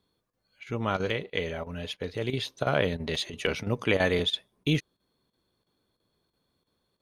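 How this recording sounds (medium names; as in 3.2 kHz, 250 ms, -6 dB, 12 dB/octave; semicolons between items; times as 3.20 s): chopped level 3 Hz, depth 65%, duty 90%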